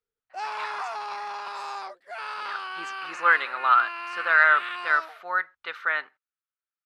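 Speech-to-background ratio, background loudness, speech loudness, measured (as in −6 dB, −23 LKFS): 11.0 dB, −34.0 LKFS, −23.0 LKFS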